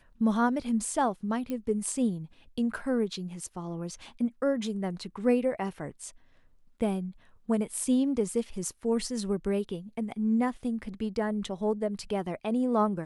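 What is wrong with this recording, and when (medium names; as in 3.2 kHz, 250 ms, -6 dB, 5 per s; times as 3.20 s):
1.50 s: pop -22 dBFS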